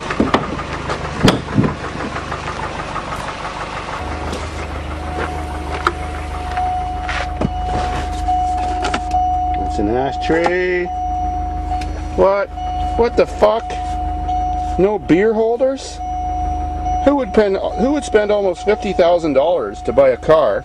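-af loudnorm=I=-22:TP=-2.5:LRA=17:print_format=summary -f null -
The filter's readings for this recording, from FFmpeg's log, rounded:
Input Integrated:    -17.6 LUFS
Input True Peak:      -1.4 dBTP
Input LRA:             7.9 LU
Input Threshold:     -27.6 LUFS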